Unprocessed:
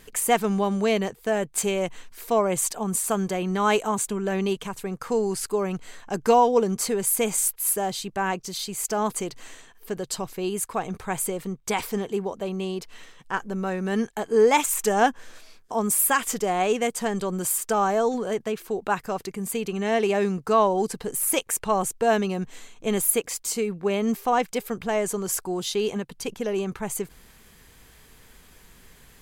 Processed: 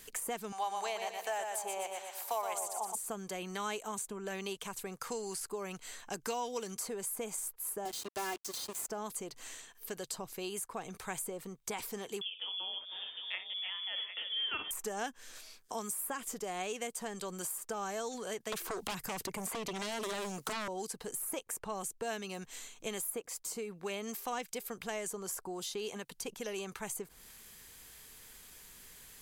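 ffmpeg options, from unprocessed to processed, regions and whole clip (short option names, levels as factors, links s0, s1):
-filter_complex "[0:a]asettb=1/sr,asplit=3[s0][s1][s2];[s0]atrim=end=0.524[s3];[s1]atrim=start=0.52:end=2.95,asetpts=PTS-STARTPTS,afade=t=in:d=0.004:c=qsin,afade=t=out:st=2.426:d=0.004:c=qsin,highpass=f=810:t=q:w=5.6,aecho=1:1:119|238|357|476|595:0.501|0.2|0.0802|0.0321|0.0128,atrim=end_sample=107163[s4];[s2]atrim=start=2.946[s5];[s3][s4]acrossfade=d=0.004:c1=hsin:c2=qsin[s6];[s6][s5]acrossfade=d=0.004:c1=qsin:c2=hsin,asettb=1/sr,asplit=3[s7][s8][s9];[s7]atrim=end=7.854[s10];[s8]atrim=start=7.85:end=8.87,asetpts=PTS-STARTPTS,afade=t=in:d=0.004:c=qsin,afade=t=out:st=1.016:d=0.004:c=qsin,highpass=f=63:w=0.5412,highpass=f=63:w=1.3066,aecho=1:1:2.9:0.88,atrim=end_sample=44982,acrusher=bits=4:mix=0:aa=0.5[s11];[s9]atrim=start=8.866[s12];[s10][s11]acrossfade=d=0.004:c1=hsin:c2=qsin[s13];[s13][s12]acrossfade=d=0.004:c1=qsin:c2=hsin,asettb=1/sr,asplit=3[s14][s15][s16];[s14]atrim=end=12.214[s17];[s15]atrim=start=12.21:end=14.71,asetpts=PTS-STARTPTS,afade=t=in:d=0.004:c=qsin,afade=t=out:st=2.496:d=0.004:c=qsin,aecho=1:1:48|58|316|675|754:0.133|0.224|0.335|0.106|0.299,atrim=end_sample=110250,lowpass=f=3100:t=q:w=0.5098,lowpass=f=3100:t=q:w=0.6013,lowpass=f=3100:t=q:w=0.9,lowpass=f=3100:t=q:w=2.563,afreqshift=-3600[s18];[s16]atrim=start=14.706[s19];[s17][s18]acrossfade=d=0.004:c1=hsin:c2=qsin[s20];[s20][s19]acrossfade=d=0.004:c1=qsin:c2=hsin,asettb=1/sr,asplit=3[s21][s22][s23];[s21]atrim=end=18.524[s24];[s22]atrim=start=18.52:end=20.68,asetpts=PTS-STARTPTS,afade=t=in:d=0.004:c=qsin,afade=t=out:st=2.156:d=0.004:c=qsin,acrossover=split=240|3000|6900[s25][s26][s27][s28];[s25]acompressor=threshold=0.00708:ratio=3[s29];[s26]acompressor=threshold=0.0141:ratio=3[s30];[s27]acompressor=threshold=0.00126:ratio=3[s31];[s28]acompressor=threshold=0.00158:ratio=3[s32];[s29][s30][s31][s32]amix=inputs=4:normalize=0,aeval=exprs='0.112*sin(PI/2*5.01*val(0)/0.112)':c=same[s33];[s23]atrim=start=20.676[s34];[s24][s33]acrossfade=d=0.004:c1=hsin:c2=qsin[s35];[s35][s34]acrossfade=d=0.004:c1=qsin:c2=hsin,highshelf=f=3400:g=10.5,acrossover=split=490|1400[s36][s37][s38];[s36]acompressor=threshold=0.0178:ratio=4[s39];[s37]acompressor=threshold=0.0158:ratio=4[s40];[s38]acompressor=threshold=0.0178:ratio=4[s41];[s39][s40][s41]amix=inputs=3:normalize=0,lowshelf=f=270:g=-5,volume=0.473"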